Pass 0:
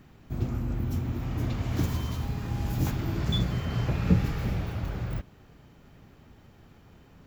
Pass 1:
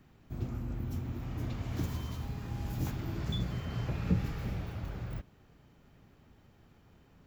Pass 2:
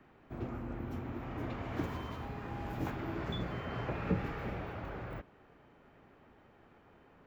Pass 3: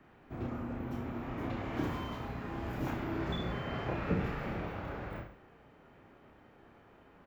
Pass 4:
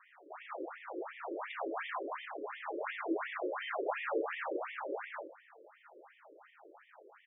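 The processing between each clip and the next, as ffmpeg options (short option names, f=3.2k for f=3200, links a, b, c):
-filter_complex "[0:a]acrossover=split=360[a][b];[b]acompressor=threshold=-31dB:ratio=6[c];[a][c]amix=inputs=2:normalize=0,volume=-7dB"
-filter_complex "[0:a]acrossover=split=290 2600:gain=0.224 1 0.126[a][b][c];[a][b][c]amix=inputs=3:normalize=0,volume=6dB"
-af "aecho=1:1:30|63|99.3|139.2|183.2:0.631|0.398|0.251|0.158|0.1"
-af "afftfilt=real='re*between(b*sr/1024,410*pow(2600/410,0.5+0.5*sin(2*PI*2.8*pts/sr))/1.41,410*pow(2600/410,0.5+0.5*sin(2*PI*2.8*pts/sr))*1.41)':imag='im*between(b*sr/1024,410*pow(2600/410,0.5+0.5*sin(2*PI*2.8*pts/sr))/1.41,410*pow(2600/410,0.5+0.5*sin(2*PI*2.8*pts/sr))*1.41)':win_size=1024:overlap=0.75,volume=8dB"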